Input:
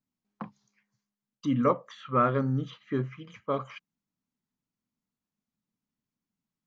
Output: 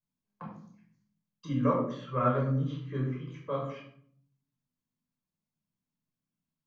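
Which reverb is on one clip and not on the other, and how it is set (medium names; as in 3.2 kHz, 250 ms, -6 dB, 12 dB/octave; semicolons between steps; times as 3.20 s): simulated room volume 870 m³, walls furnished, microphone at 5.3 m; trim -10 dB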